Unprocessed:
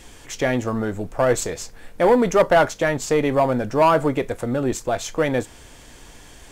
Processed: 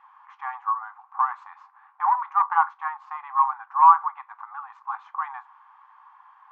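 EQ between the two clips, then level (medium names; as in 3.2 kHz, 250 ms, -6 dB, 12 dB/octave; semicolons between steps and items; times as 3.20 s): brick-wall FIR high-pass 750 Hz; resonant low-pass 1.1 kHz, resonance Q 8.1; distance through air 120 m; -7.0 dB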